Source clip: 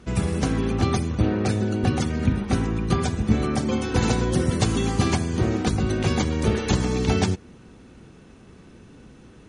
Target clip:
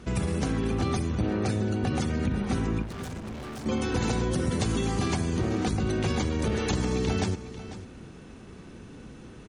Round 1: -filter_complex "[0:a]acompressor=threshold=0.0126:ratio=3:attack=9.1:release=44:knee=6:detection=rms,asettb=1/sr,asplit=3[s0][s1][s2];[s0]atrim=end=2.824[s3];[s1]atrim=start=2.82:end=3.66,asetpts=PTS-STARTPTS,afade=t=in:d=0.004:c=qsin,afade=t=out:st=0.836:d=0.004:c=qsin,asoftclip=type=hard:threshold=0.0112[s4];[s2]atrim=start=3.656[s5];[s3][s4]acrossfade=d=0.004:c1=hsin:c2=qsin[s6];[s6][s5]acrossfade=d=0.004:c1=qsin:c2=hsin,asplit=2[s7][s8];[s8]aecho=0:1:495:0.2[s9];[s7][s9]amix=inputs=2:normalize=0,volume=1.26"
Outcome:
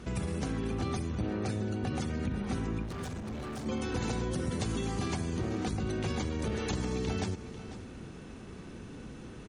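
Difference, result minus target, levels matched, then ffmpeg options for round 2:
compression: peak gain reduction +6 dB
-filter_complex "[0:a]acompressor=threshold=0.0355:ratio=3:attack=9.1:release=44:knee=6:detection=rms,asettb=1/sr,asplit=3[s0][s1][s2];[s0]atrim=end=2.824[s3];[s1]atrim=start=2.82:end=3.66,asetpts=PTS-STARTPTS,afade=t=in:d=0.004:c=qsin,afade=t=out:st=0.836:d=0.004:c=qsin,asoftclip=type=hard:threshold=0.0112[s4];[s2]atrim=start=3.656[s5];[s3][s4]acrossfade=d=0.004:c1=hsin:c2=qsin[s6];[s6][s5]acrossfade=d=0.004:c1=qsin:c2=hsin,asplit=2[s7][s8];[s8]aecho=0:1:495:0.2[s9];[s7][s9]amix=inputs=2:normalize=0,volume=1.26"

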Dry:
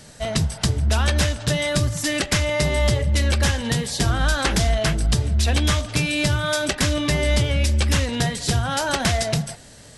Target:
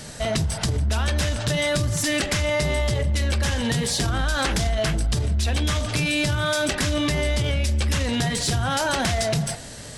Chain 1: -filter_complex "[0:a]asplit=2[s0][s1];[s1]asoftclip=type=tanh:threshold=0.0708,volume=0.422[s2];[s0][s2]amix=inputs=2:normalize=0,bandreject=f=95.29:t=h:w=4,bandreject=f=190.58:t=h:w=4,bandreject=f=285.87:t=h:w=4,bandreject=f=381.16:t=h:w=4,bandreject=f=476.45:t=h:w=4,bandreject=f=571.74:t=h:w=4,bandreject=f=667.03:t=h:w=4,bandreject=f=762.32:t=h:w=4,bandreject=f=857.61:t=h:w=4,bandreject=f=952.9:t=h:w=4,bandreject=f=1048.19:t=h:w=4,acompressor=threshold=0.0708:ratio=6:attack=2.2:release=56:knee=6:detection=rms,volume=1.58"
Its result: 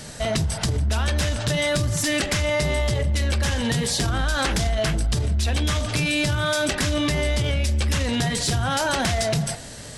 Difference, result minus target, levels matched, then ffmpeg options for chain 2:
saturation: distortion -4 dB
-filter_complex "[0:a]asplit=2[s0][s1];[s1]asoftclip=type=tanh:threshold=0.0282,volume=0.422[s2];[s0][s2]amix=inputs=2:normalize=0,bandreject=f=95.29:t=h:w=4,bandreject=f=190.58:t=h:w=4,bandreject=f=285.87:t=h:w=4,bandreject=f=381.16:t=h:w=4,bandreject=f=476.45:t=h:w=4,bandreject=f=571.74:t=h:w=4,bandreject=f=667.03:t=h:w=4,bandreject=f=762.32:t=h:w=4,bandreject=f=857.61:t=h:w=4,bandreject=f=952.9:t=h:w=4,bandreject=f=1048.19:t=h:w=4,acompressor=threshold=0.0708:ratio=6:attack=2.2:release=56:knee=6:detection=rms,volume=1.58"

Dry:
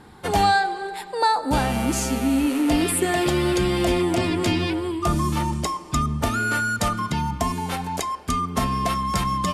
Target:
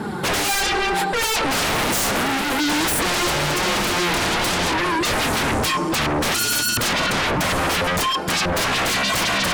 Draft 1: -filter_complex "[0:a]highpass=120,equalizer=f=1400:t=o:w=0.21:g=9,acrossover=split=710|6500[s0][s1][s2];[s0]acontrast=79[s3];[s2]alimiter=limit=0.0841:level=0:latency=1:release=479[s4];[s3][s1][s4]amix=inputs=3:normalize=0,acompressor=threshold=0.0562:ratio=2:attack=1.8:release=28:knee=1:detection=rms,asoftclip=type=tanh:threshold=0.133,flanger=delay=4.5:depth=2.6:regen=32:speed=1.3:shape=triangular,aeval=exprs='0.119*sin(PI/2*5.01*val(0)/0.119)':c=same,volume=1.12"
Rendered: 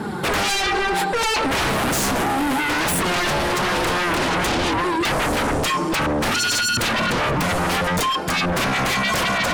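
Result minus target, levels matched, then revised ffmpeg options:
compression: peak gain reduction +9 dB
-filter_complex "[0:a]highpass=120,equalizer=f=1400:t=o:w=0.21:g=9,acrossover=split=710|6500[s0][s1][s2];[s0]acontrast=79[s3];[s2]alimiter=limit=0.0841:level=0:latency=1:release=479[s4];[s3][s1][s4]amix=inputs=3:normalize=0,asoftclip=type=tanh:threshold=0.133,flanger=delay=4.5:depth=2.6:regen=32:speed=1.3:shape=triangular,aeval=exprs='0.119*sin(PI/2*5.01*val(0)/0.119)':c=same,volume=1.12"

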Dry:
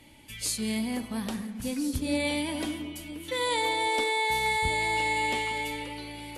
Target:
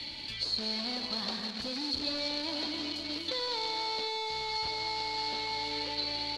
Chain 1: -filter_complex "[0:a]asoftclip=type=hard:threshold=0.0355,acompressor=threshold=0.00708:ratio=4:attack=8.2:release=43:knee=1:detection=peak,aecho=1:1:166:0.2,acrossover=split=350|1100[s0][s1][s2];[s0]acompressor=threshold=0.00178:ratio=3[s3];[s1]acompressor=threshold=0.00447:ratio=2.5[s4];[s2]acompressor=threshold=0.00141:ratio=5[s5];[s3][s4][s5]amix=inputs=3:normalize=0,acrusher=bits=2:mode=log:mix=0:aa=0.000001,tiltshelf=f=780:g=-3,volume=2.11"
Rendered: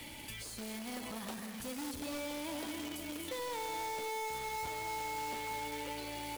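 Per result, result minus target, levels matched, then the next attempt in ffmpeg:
4 kHz band -7.5 dB; compression: peak gain reduction +6.5 dB
-filter_complex "[0:a]asoftclip=type=hard:threshold=0.0355,acompressor=threshold=0.00708:ratio=4:attack=8.2:release=43:knee=1:detection=peak,aecho=1:1:166:0.2,acrossover=split=350|1100[s0][s1][s2];[s0]acompressor=threshold=0.00178:ratio=3[s3];[s1]acompressor=threshold=0.00447:ratio=2.5[s4];[s2]acompressor=threshold=0.00141:ratio=5[s5];[s3][s4][s5]amix=inputs=3:normalize=0,acrusher=bits=2:mode=log:mix=0:aa=0.000001,lowpass=f=4300:t=q:w=14,tiltshelf=f=780:g=-3,volume=2.11"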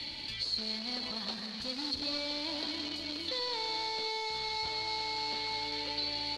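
compression: peak gain reduction +6.5 dB
-filter_complex "[0:a]asoftclip=type=hard:threshold=0.0355,acompressor=threshold=0.0188:ratio=4:attack=8.2:release=43:knee=1:detection=peak,aecho=1:1:166:0.2,acrossover=split=350|1100[s0][s1][s2];[s0]acompressor=threshold=0.00178:ratio=3[s3];[s1]acompressor=threshold=0.00447:ratio=2.5[s4];[s2]acompressor=threshold=0.00141:ratio=5[s5];[s3][s4][s5]amix=inputs=3:normalize=0,acrusher=bits=2:mode=log:mix=0:aa=0.000001,lowpass=f=4300:t=q:w=14,tiltshelf=f=780:g=-3,volume=2.11"

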